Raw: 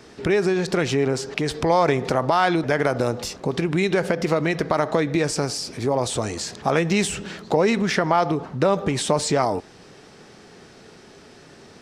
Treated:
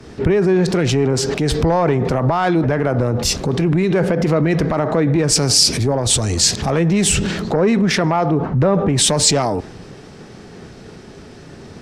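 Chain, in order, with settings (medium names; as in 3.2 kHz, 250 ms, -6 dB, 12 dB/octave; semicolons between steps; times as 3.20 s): bass shelf 300 Hz +9.5 dB; in parallel at +2.5 dB: compression, threshold -27 dBFS, peak gain reduction 15 dB; on the sum: sine folder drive 4 dB, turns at 0 dBFS; loudness maximiser +9.5 dB; three bands expanded up and down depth 100%; trim -8.5 dB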